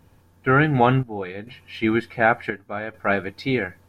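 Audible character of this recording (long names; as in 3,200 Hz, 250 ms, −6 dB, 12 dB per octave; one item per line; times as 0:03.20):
chopped level 0.68 Hz, depth 65%, duty 70%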